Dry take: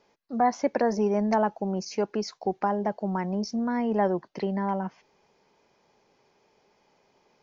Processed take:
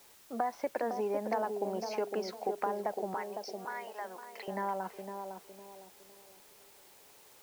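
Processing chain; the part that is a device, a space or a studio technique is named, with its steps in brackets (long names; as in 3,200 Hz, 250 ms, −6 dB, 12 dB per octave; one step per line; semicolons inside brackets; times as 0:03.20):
baby monitor (band-pass filter 410–3,600 Hz; downward compressor, threshold −30 dBFS, peak gain reduction 11 dB; white noise bed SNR 22 dB)
0:03.14–0:04.48: high-pass filter 1,100 Hz 12 dB per octave
feedback echo with a band-pass in the loop 507 ms, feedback 41%, band-pass 370 Hz, level −4 dB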